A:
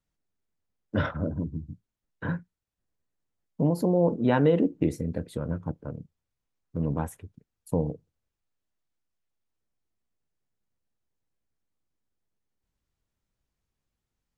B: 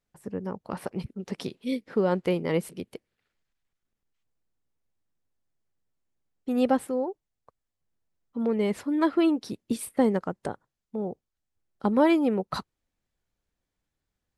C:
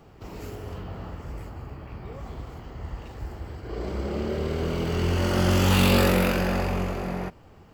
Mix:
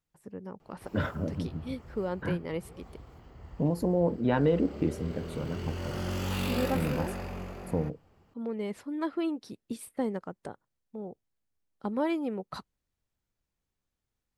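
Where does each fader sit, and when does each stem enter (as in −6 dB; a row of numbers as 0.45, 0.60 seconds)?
−3.5, −8.5, −12.0 decibels; 0.00, 0.00, 0.60 seconds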